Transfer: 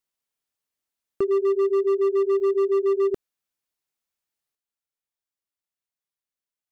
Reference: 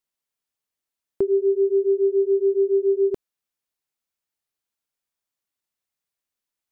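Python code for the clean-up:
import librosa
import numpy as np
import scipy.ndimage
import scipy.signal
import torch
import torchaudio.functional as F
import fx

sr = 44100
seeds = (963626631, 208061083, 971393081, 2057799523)

y = fx.fix_declip(x, sr, threshold_db=-17.5)
y = fx.fix_interpolate(y, sr, at_s=(2.4,), length_ms=1.5)
y = fx.fix_level(y, sr, at_s=4.55, step_db=7.0)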